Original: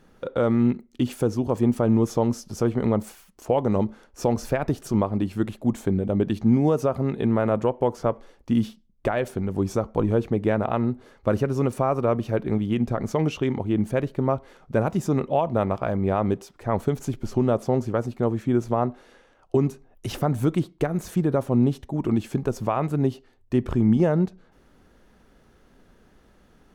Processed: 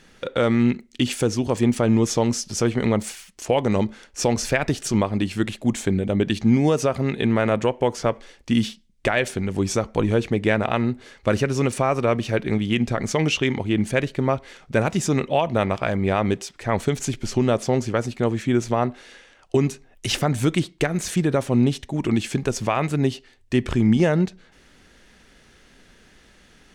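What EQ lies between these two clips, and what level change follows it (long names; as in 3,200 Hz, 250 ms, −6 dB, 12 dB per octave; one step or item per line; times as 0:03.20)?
flat-topped bell 4,000 Hz +11.5 dB 2.8 octaves
+1.5 dB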